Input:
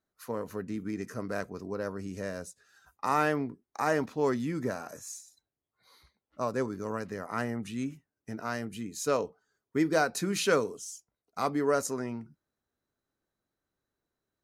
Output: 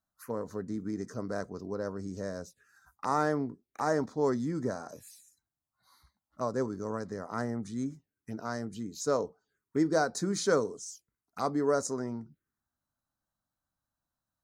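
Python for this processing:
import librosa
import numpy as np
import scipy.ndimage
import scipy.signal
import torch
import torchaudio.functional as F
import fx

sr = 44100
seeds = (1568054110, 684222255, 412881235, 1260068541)

y = fx.env_phaser(x, sr, low_hz=410.0, high_hz=2700.0, full_db=-34.0)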